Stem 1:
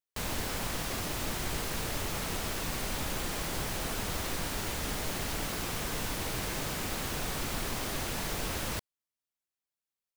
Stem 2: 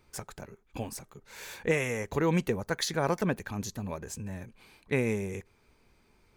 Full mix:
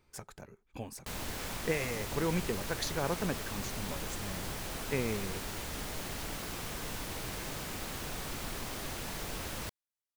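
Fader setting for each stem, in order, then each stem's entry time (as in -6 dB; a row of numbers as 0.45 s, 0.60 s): -5.0 dB, -5.5 dB; 0.90 s, 0.00 s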